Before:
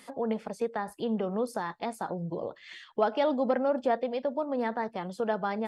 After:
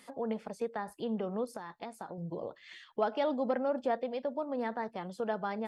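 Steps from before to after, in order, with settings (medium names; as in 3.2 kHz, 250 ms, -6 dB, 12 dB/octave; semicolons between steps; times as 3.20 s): 1.44–2.18 s: compression, threshold -34 dBFS, peak gain reduction 7 dB; trim -4.5 dB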